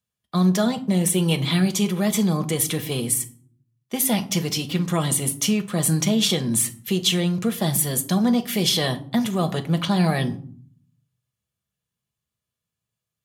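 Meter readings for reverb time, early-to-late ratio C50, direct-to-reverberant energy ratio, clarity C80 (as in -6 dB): 0.55 s, 16.5 dB, 6.5 dB, 21.0 dB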